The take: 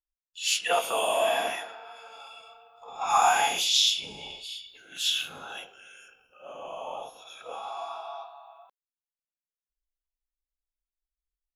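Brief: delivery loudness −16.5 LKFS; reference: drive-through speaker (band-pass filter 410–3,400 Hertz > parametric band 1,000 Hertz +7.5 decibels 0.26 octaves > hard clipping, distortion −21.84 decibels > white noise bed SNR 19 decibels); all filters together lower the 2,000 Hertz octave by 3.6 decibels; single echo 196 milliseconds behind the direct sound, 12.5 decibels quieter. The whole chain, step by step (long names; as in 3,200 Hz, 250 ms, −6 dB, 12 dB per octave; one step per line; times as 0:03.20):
band-pass filter 410–3,400 Hz
parametric band 1,000 Hz +7.5 dB 0.26 octaves
parametric band 2,000 Hz −4.5 dB
single-tap delay 196 ms −12.5 dB
hard clipping −15 dBFS
white noise bed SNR 19 dB
level +12.5 dB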